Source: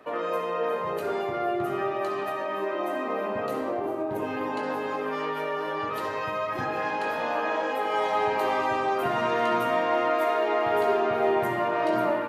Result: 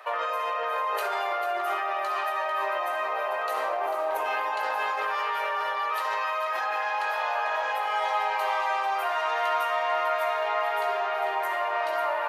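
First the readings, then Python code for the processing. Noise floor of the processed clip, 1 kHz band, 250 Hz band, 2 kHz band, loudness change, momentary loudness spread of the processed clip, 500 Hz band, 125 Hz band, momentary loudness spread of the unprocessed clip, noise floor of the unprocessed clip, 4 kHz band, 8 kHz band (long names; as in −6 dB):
−29 dBFS, +1.5 dB, below −20 dB, +3.0 dB, −0.5 dB, 3 LU, −4.5 dB, below −35 dB, 6 LU, −31 dBFS, +2.5 dB, can't be measured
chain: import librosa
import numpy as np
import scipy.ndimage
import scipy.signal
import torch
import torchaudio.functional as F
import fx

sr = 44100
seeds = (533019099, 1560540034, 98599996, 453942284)

p1 = scipy.signal.sosfilt(scipy.signal.butter(4, 690.0, 'highpass', fs=sr, output='sos'), x)
p2 = fx.peak_eq(p1, sr, hz=7600.0, db=-2.5, octaves=0.31)
p3 = fx.over_compress(p2, sr, threshold_db=-36.0, ratio=-0.5)
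p4 = p2 + (p3 * 10.0 ** (-2.0 / 20.0))
p5 = fx.quant_float(p4, sr, bits=8)
y = p5 + 10.0 ** (-10.5 / 20.0) * np.pad(p5, (int(446 * sr / 1000.0), 0))[:len(p5)]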